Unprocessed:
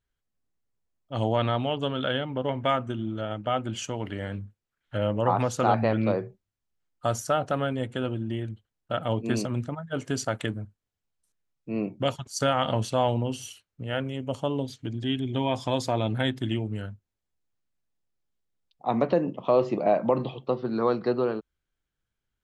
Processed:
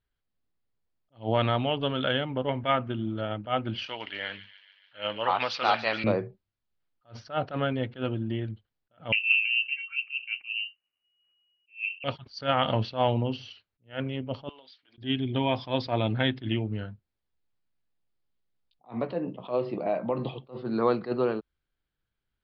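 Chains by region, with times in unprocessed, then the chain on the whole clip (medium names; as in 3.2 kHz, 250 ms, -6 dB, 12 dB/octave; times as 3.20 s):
3.86–6.04 s: frequency weighting ITU-R 468 + feedback echo behind a high-pass 143 ms, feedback 64%, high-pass 2.5 kHz, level -9.5 dB
9.12–12.04 s: low-pass that closes with the level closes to 390 Hz, closed at -28.5 dBFS + doubling 22 ms -8 dB + frequency inversion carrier 2.9 kHz
14.49–14.98 s: high-pass 1.2 kHz + compression 10:1, threshold -47 dBFS
16.83–20.22 s: compression 1.5:1, threshold -36 dBFS + doubling 16 ms -11 dB
whole clip: steep low-pass 5 kHz 72 dB/octave; dynamic bell 2.4 kHz, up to +4 dB, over -44 dBFS, Q 1.7; attacks held to a fixed rise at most 240 dB/s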